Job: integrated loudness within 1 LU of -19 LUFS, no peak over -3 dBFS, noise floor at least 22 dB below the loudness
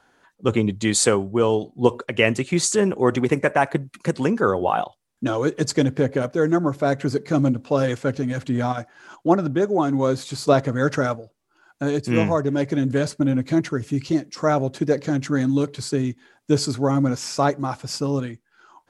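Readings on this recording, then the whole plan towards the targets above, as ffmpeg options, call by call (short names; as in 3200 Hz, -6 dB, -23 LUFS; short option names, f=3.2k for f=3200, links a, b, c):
loudness -22.0 LUFS; peak -1.5 dBFS; loudness target -19.0 LUFS
-> -af "volume=3dB,alimiter=limit=-3dB:level=0:latency=1"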